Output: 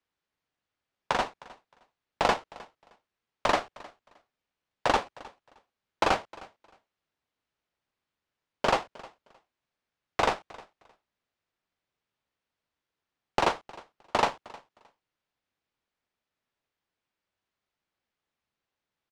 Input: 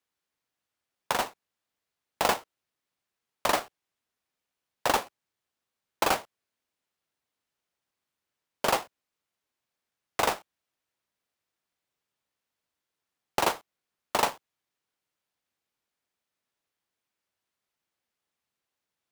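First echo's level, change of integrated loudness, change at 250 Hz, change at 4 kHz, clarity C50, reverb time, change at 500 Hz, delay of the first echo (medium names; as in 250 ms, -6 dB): -21.5 dB, 0.0 dB, +2.0 dB, -1.5 dB, no reverb, no reverb, +1.5 dB, 310 ms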